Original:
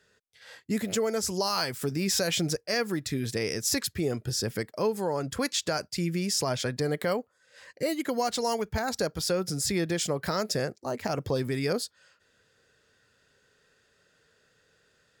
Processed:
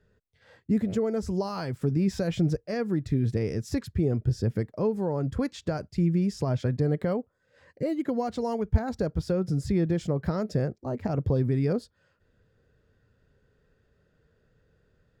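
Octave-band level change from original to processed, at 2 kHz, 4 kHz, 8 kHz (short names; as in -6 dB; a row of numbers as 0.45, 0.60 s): -9.0, -14.5, -17.5 dB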